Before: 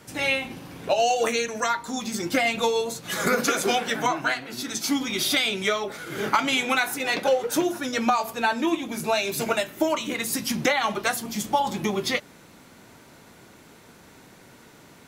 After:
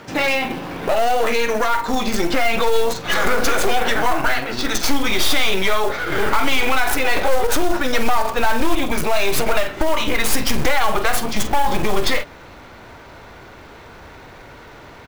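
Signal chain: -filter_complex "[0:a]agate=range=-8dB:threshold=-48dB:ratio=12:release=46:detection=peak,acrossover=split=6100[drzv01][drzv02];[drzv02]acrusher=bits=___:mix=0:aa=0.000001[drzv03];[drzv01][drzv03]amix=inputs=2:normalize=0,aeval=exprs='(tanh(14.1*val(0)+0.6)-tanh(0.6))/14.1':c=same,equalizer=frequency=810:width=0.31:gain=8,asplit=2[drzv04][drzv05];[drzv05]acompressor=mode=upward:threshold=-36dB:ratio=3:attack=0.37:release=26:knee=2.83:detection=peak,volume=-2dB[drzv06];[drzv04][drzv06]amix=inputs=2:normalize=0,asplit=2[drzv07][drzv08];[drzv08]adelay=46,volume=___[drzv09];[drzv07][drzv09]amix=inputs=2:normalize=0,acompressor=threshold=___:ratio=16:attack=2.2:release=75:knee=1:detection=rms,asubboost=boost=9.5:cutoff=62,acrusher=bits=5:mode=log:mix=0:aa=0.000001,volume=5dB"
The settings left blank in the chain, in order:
4, -13.5dB, -18dB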